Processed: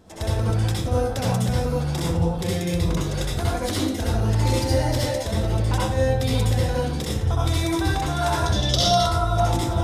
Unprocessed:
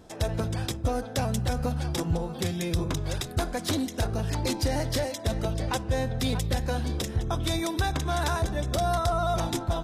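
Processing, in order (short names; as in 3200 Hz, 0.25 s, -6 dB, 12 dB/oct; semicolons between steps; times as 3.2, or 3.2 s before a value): 8.46–8.97 band shelf 4300 Hz +14.5 dB 1.3 oct; reverb RT60 0.55 s, pre-delay 60 ms, DRR -5.5 dB; gain -2 dB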